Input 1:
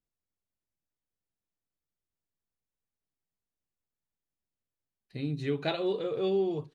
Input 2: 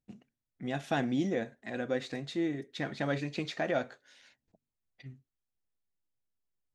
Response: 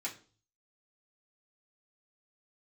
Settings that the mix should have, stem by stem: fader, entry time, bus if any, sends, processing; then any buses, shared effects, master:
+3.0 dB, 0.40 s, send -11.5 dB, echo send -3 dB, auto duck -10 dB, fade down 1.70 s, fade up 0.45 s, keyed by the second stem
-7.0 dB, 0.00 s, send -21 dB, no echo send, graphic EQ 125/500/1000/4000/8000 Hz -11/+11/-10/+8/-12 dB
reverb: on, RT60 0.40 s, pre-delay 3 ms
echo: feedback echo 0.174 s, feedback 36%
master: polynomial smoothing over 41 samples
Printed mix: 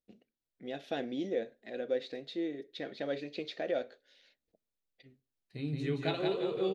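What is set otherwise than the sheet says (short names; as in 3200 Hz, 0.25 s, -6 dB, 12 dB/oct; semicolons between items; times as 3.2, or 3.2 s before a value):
stem 1 +3.0 dB -> -4.5 dB; master: missing polynomial smoothing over 41 samples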